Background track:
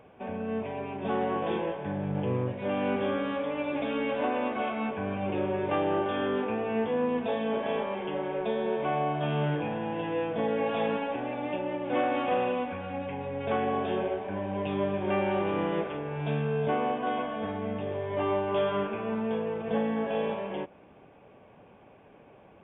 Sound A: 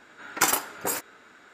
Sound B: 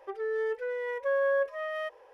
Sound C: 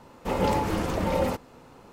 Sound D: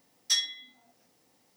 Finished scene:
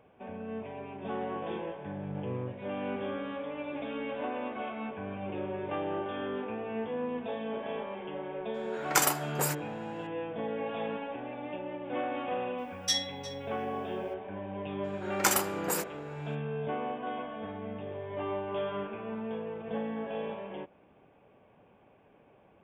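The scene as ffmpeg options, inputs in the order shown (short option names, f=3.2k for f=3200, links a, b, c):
-filter_complex "[1:a]asplit=2[a][b];[0:a]volume=-6.5dB[c];[4:a]asplit=2[d][e];[e]adelay=355.7,volume=-13dB,highshelf=f=4k:g=-8[f];[d][f]amix=inputs=2:normalize=0[g];[a]atrim=end=1.53,asetpts=PTS-STARTPTS,volume=-3dB,afade=t=in:d=0.004:c=hsin,afade=t=out:st=1.526:d=0.004:c=hsin,adelay=8540[h];[g]atrim=end=1.56,asetpts=PTS-STARTPTS,volume=-3dB,afade=t=in:d=0.004:c=hsin,afade=t=out:st=1.556:d=0.004:c=hsin,adelay=12580[i];[b]atrim=end=1.53,asetpts=PTS-STARTPTS,volume=-4dB,afade=t=in:d=0.02,afade=t=out:st=1.51:d=0.02,adelay=14830[j];[c][h][i][j]amix=inputs=4:normalize=0"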